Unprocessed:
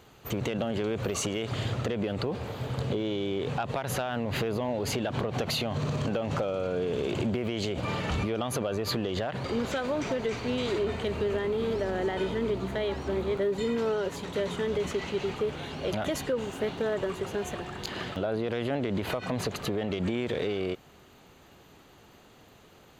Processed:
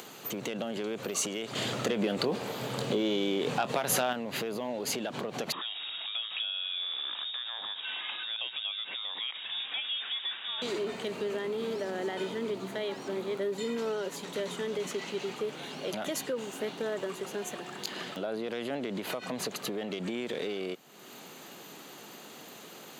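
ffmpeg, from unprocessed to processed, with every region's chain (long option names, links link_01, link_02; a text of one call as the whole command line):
ffmpeg -i in.wav -filter_complex "[0:a]asettb=1/sr,asplit=3[link_01][link_02][link_03];[link_01]atrim=end=1.554[link_04];[link_02]atrim=start=1.55:end=4.13,asetpts=PTS-STARTPTS,afade=type=in:duration=0.004:curve=qsin,afade=type=out:start_time=2.576:duration=0.004:curve=qsin,acontrast=47,asplit=2[link_05][link_06];[link_06]adelay=24,volume=-12.5dB[link_07];[link_05][link_07]amix=inputs=2:normalize=0,atrim=end_sample=113778[link_08];[link_03]atrim=start=4.126[link_09];[link_04][link_08]acrossfade=duration=0.004:curve1=hsin:curve2=qsin[link_10];[link_10][link_09]acrossfade=duration=0.004:curve1=qsin:curve2=hsin,asettb=1/sr,asplit=3[link_11][link_12][link_13];[link_11]atrim=end=5.524[link_14];[link_12]atrim=start=5.52:end=10.62,asetpts=PTS-STARTPTS,afade=type=in:duration=0.004:curve=qsin,afade=type=out:start_time=5.096:duration=0.004:curve=qsin,highpass=frequency=620:poles=1,lowpass=frequency=3300:width_type=q:width=0.5098,lowpass=frequency=3300:width_type=q:width=0.6013,lowpass=frequency=3300:width_type=q:width=0.9,lowpass=frequency=3300:width_type=q:width=2.563,afreqshift=-3900[link_15];[link_13]atrim=start=10.616[link_16];[link_14][link_15]acrossfade=duration=0.004:curve1=hsin:curve2=qsin[link_17];[link_17][link_16]acrossfade=duration=0.004:curve1=qsin:curve2=hsin,highpass=frequency=170:width=0.5412,highpass=frequency=170:width=1.3066,highshelf=frequency=4200:gain=9.5,acompressor=mode=upward:threshold=-32dB:ratio=2.5,volume=-4.5dB" out.wav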